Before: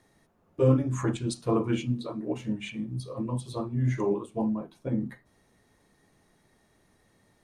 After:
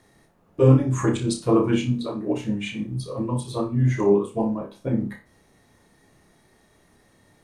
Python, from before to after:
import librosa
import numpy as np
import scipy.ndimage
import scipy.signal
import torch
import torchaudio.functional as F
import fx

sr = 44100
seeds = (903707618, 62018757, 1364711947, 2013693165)

y = fx.room_flutter(x, sr, wall_m=5.1, rt60_s=0.28)
y = y * 10.0 ** (5.5 / 20.0)